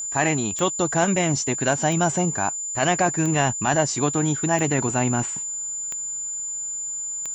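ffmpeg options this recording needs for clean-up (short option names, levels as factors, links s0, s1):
-af "adeclick=t=4,bandreject=f=7100:w=30"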